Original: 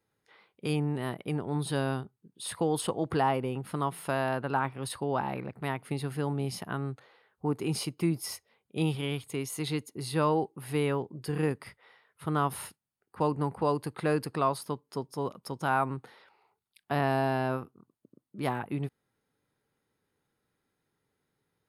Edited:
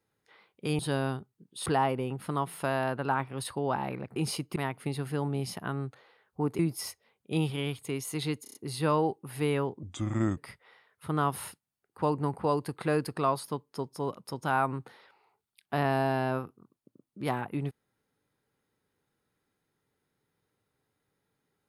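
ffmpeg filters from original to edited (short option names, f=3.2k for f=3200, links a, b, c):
-filter_complex "[0:a]asplit=12[a][b][c][d][e][f][g][h][i][j][k][l];[a]atrim=end=0.792[m];[b]atrim=start=1.628:end=2.502[n];[c]atrim=start=3.108:end=5.612[o];[d]atrim=start=7.638:end=8.042[p];[e]atrim=start=5.608:end=7.642[q];[f]atrim=start=8.038:end=9.912[r];[g]atrim=start=9.878:end=9.912[s];[h]atrim=start=9.878:end=9.912[t];[i]atrim=start=9.878:end=9.912[u];[j]atrim=start=9.878:end=11.164[v];[k]atrim=start=11.16:end=11.55,asetpts=PTS-STARTPTS,asetrate=31752,aresample=44100[w];[l]atrim=start=11.546[x];[m][n]acrossfade=d=0.004:c1=hsin:c2=hsin[y];[y][o]acrossfade=d=0.004:c1=hsin:c2=hsin[z];[z][p]acrossfade=d=0.004:c1=hsin:c2=hsin[aa];[aa][q]acrossfade=d=0.004:c1=hsin:c2=hsin[ab];[ab][r]acrossfade=d=0.004:c1=hsin:c2=hsin[ac];[ac][s]acrossfade=d=0.004:c1=hsin:c2=hsin[ad];[ad][t]acrossfade=d=0.004:c1=hsin:c2=hsin[ae];[ae][u]acrossfade=d=0.004:c1=hsin:c2=hsin[af];[af][v]acrossfade=d=0.004:c1=hsin:c2=hsin[ag];[ag][w]acrossfade=d=0.004:c1=hsin:c2=hsin[ah];[ah][x]acrossfade=d=0.004:c1=hsin:c2=hsin"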